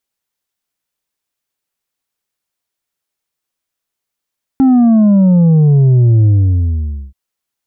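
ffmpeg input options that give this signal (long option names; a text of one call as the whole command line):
ffmpeg -f lavfi -i "aevalsrc='0.501*clip((2.53-t)/0.87,0,1)*tanh(1.68*sin(2*PI*270*2.53/log(65/270)*(exp(log(65/270)*t/2.53)-1)))/tanh(1.68)':duration=2.53:sample_rate=44100" out.wav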